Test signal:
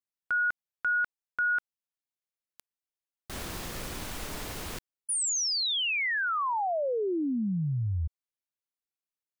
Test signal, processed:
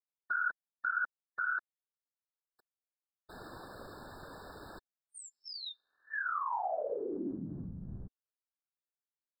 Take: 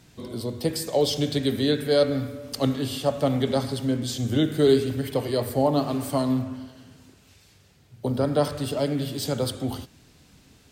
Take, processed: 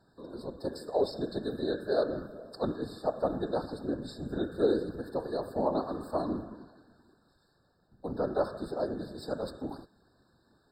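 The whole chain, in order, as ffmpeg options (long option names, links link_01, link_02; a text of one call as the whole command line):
ffmpeg -i in.wav -af "afftfilt=real='hypot(re,im)*cos(2*PI*random(0))':imag='hypot(re,im)*sin(2*PI*random(1))':win_size=512:overlap=0.75,bass=frequency=250:gain=-9,treble=frequency=4000:gain=-14,afftfilt=real='re*eq(mod(floor(b*sr/1024/1800),2),0)':imag='im*eq(mod(floor(b*sr/1024/1800),2),0)':win_size=1024:overlap=0.75" out.wav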